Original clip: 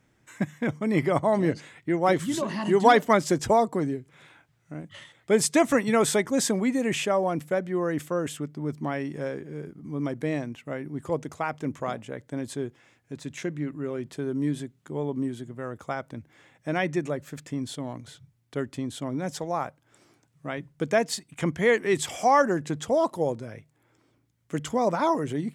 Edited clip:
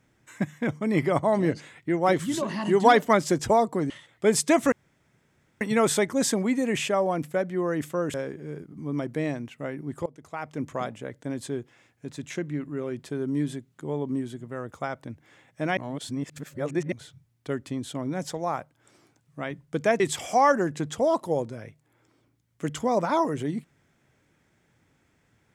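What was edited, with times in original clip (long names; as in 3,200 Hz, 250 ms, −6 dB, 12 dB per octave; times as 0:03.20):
0:03.90–0:04.96: remove
0:05.78: splice in room tone 0.89 s
0:08.31–0:09.21: remove
0:11.13–0:11.75: fade in, from −24 dB
0:16.84–0:17.99: reverse
0:21.07–0:21.90: remove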